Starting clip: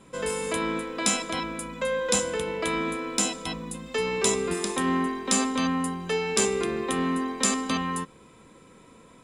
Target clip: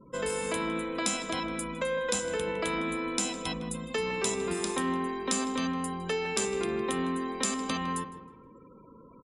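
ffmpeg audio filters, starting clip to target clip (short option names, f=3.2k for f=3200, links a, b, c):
-filter_complex "[0:a]afftfilt=real='re*gte(hypot(re,im),0.00447)':imag='im*gte(hypot(re,im),0.00447)':win_size=1024:overlap=0.75,acompressor=threshold=-29dB:ratio=2.5,asplit=2[a][b];[b]adelay=158,lowpass=f=2.5k:p=1,volume=-11.5dB,asplit=2[c][d];[d]adelay=158,lowpass=f=2.5k:p=1,volume=0.44,asplit=2[e][f];[f]adelay=158,lowpass=f=2.5k:p=1,volume=0.44,asplit=2[g][h];[h]adelay=158,lowpass=f=2.5k:p=1,volume=0.44[i];[a][c][e][g][i]amix=inputs=5:normalize=0"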